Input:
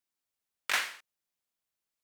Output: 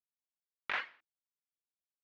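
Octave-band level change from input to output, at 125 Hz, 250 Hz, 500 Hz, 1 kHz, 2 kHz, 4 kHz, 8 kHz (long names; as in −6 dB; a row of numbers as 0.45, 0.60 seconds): can't be measured, −3.5 dB, −4.0 dB, −4.5 dB, −5.5 dB, −11.0 dB, below −30 dB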